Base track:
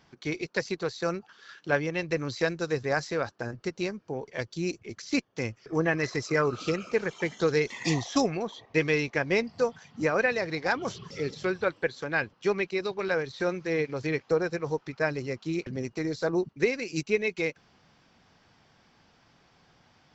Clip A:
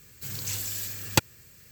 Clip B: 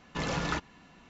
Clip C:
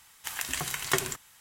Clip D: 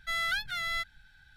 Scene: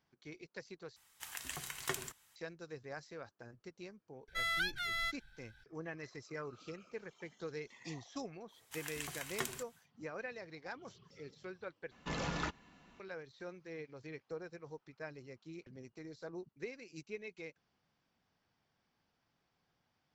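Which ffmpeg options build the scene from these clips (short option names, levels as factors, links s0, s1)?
-filter_complex "[3:a]asplit=2[s0][s1];[0:a]volume=0.112,asplit=3[s2][s3][s4];[s2]atrim=end=0.964[s5];[s0]atrim=end=1.4,asetpts=PTS-STARTPTS,volume=0.266[s6];[s3]atrim=start=2.356:end=11.914[s7];[2:a]atrim=end=1.09,asetpts=PTS-STARTPTS,volume=0.473[s8];[s4]atrim=start=12.996[s9];[4:a]atrim=end=1.36,asetpts=PTS-STARTPTS,volume=0.596,afade=t=in:d=0.004:c=hsin,afade=t=out:st=1.356:d=0.004:c=hsin,adelay=4280[s10];[s1]atrim=end=1.4,asetpts=PTS-STARTPTS,volume=0.237,afade=t=in:d=0.1,afade=t=out:st=1.3:d=0.1,adelay=8470[s11];[s5][s6]acrossfade=d=0.004:c1=hsin:c2=hsin[s12];[s12][s7]acrossfade=d=0.004:c1=hsin:c2=hsin[s13];[s13][s8]acrossfade=d=0.004:c1=hsin:c2=hsin[s14];[s14][s9]acrossfade=d=0.004:c1=hsin:c2=hsin[s15];[s15][s10][s11]amix=inputs=3:normalize=0"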